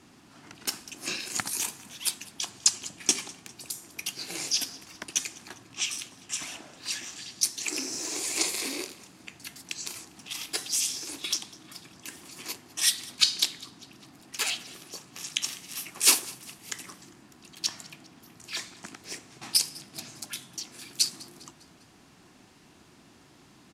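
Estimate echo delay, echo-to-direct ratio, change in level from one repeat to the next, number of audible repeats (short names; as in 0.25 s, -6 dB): 0.201 s, -20.5 dB, -6.0 dB, 3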